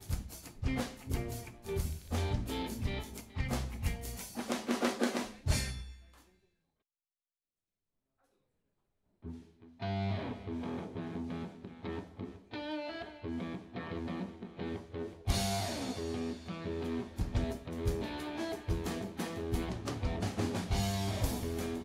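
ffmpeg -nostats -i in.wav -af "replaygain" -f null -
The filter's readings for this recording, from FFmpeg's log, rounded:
track_gain = +19.6 dB
track_peak = 0.110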